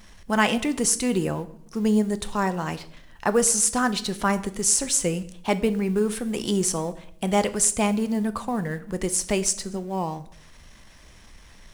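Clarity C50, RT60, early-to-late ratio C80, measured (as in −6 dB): 16.5 dB, 0.65 s, 19.0 dB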